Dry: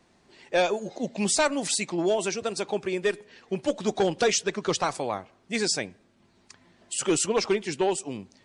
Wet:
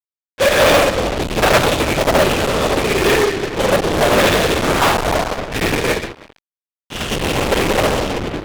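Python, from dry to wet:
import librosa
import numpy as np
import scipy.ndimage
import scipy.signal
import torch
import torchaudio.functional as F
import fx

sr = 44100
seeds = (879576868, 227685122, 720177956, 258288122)

y = fx.spec_steps(x, sr, hold_ms=200)
y = fx.room_shoebox(y, sr, seeds[0], volume_m3=230.0, walls='mixed', distance_m=2.3)
y = fx.lpc_vocoder(y, sr, seeds[1], excitation='whisper', order=8)
y = fx.low_shelf(y, sr, hz=71.0, db=11.0, at=(4.95, 5.61))
y = fx.echo_feedback(y, sr, ms=327, feedback_pct=39, wet_db=-15)
y = fx.fuzz(y, sr, gain_db=38.0, gate_db=-37.0)
y = fx.low_shelf(y, sr, hz=210.0, db=-9.0)
y = fx.upward_expand(y, sr, threshold_db=-28.0, expansion=2.5)
y = y * librosa.db_to_amplitude(6.5)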